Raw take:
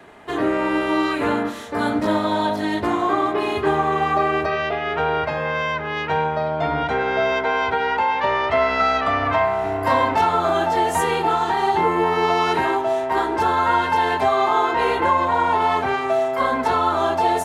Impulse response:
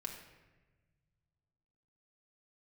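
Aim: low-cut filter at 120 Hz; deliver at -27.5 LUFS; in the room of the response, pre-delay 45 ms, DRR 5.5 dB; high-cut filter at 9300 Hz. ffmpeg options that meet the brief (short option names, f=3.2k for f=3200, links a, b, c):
-filter_complex "[0:a]highpass=120,lowpass=9.3k,asplit=2[a][b];[1:a]atrim=start_sample=2205,adelay=45[c];[b][c]afir=irnorm=-1:irlink=0,volume=-4dB[d];[a][d]amix=inputs=2:normalize=0,volume=-8dB"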